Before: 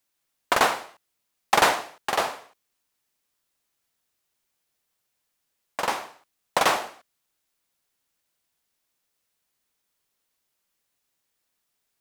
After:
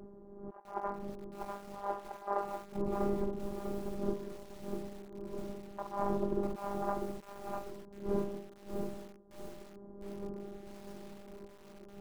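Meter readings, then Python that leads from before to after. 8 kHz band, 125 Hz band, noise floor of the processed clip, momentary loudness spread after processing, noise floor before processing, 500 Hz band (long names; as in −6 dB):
−23.0 dB, +5.0 dB, −54 dBFS, 16 LU, −78 dBFS, −3.5 dB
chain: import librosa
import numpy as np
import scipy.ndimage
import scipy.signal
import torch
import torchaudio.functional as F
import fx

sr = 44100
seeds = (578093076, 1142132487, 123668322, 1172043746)

y = fx.dmg_wind(x, sr, seeds[0], corner_hz=320.0, level_db=-41.0)
y = (np.kron(scipy.signal.resample_poly(y, 1, 6), np.eye(6)[0]) * 6)[:len(y)]
y = scipy.signal.sosfilt(scipy.signal.butter(4, 1200.0, 'lowpass', fs=sr, output='sos'), y)
y = fx.hum_notches(y, sr, base_hz=50, count=10)
y = y + 10.0 ** (-12.5 / 20.0) * np.pad(y, (int(185 * sr / 1000.0), 0))[:len(y)]
y = fx.dynamic_eq(y, sr, hz=800.0, q=1.7, threshold_db=-35.0, ratio=4.0, max_db=5)
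y = fx.over_compress(y, sr, threshold_db=-33.0, ratio=-0.5)
y = fx.robotise(y, sr, hz=200.0)
y = fx.peak_eq(y, sr, hz=350.0, db=12.5, octaves=0.3)
y = fx.echo_crushed(y, sr, ms=647, feedback_pct=35, bits=8, wet_db=-4.5)
y = y * librosa.db_to_amplitude(-3.0)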